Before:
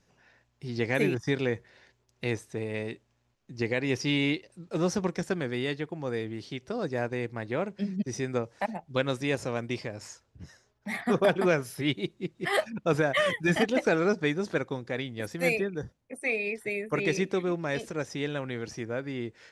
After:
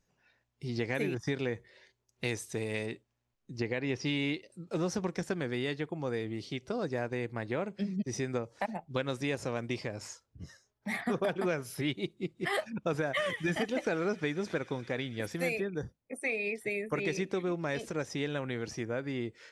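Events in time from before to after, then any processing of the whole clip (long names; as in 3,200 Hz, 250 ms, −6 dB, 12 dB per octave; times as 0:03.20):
0:02.24–0:02.86: high-shelf EQ 3,400 Hz +11.5 dB
0:03.60–0:04.06: high-frequency loss of the air 85 metres
0:12.85–0:15.60: delay with a high-pass on its return 116 ms, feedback 81%, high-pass 2,400 Hz, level −17.5 dB
whole clip: noise reduction from a noise print of the clip's start 10 dB; downward compressor 3 to 1, threshold −30 dBFS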